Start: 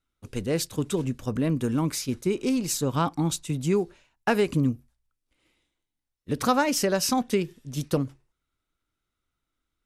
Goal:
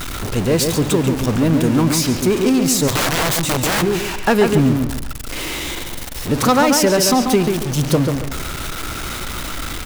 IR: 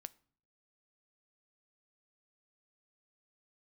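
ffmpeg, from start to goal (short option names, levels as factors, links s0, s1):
-filter_complex "[0:a]aeval=exprs='val(0)+0.5*0.0447*sgn(val(0))':c=same,asplit=2[s0][s1];[s1]adelay=139,lowpass=f=3100:p=1,volume=0.562,asplit=2[s2][s3];[s3]adelay=139,lowpass=f=3100:p=1,volume=0.31,asplit=2[s4][s5];[s5]adelay=139,lowpass=f=3100:p=1,volume=0.31,asplit=2[s6][s7];[s7]adelay=139,lowpass=f=3100:p=1,volume=0.31[s8];[s0][s2][s4][s6][s8]amix=inputs=5:normalize=0,acontrast=89,asplit=3[s9][s10][s11];[s9]afade=t=out:st=2.87:d=0.02[s12];[s10]aeval=exprs='(mod(4.73*val(0)+1,2)-1)/4.73':c=same,afade=t=in:st=2.87:d=0.02,afade=t=out:st=3.81:d=0.02[s13];[s11]afade=t=in:st=3.81:d=0.02[s14];[s12][s13][s14]amix=inputs=3:normalize=0"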